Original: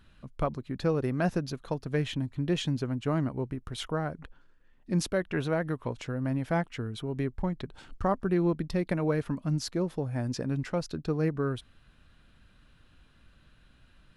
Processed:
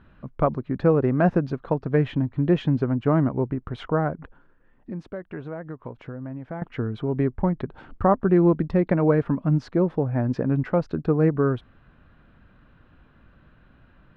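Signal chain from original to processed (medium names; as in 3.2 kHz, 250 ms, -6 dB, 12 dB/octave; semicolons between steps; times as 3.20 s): low-pass 1.5 kHz 12 dB/octave; bass shelf 62 Hz -8.5 dB; 4.14–6.62 s: compression 3:1, threshold -45 dBFS, peak gain reduction 16 dB; trim +9 dB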